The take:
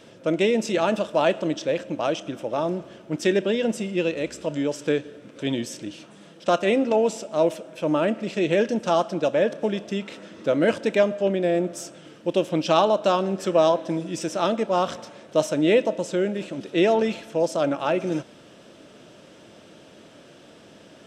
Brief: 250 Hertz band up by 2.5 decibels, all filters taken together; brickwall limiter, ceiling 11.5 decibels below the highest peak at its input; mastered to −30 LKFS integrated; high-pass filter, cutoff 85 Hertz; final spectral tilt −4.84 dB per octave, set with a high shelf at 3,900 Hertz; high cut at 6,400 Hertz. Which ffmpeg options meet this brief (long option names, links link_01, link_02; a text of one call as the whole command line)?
ffmpeg -i in.wav -af "highpass=85,lowpass=6400,equalizer=frequency=250:width_type=o:gain=3.5,highshelf=frequency=3900:gain=5,volume=-3.5dB,alimiter=limit=-19.5dB:level=0:latency=1" out.wav